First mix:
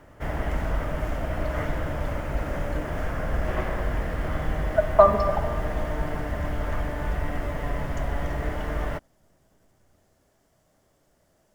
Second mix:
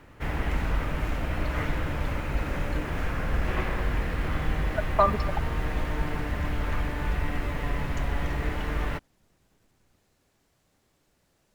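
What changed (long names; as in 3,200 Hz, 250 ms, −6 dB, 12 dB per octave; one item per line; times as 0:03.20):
speech: send −11.0 dB
master: add thirty-one-band graphic EQ 630 Hz −9 dB, 2,500 Hz +7 dB, 4,000 Hz +7 dB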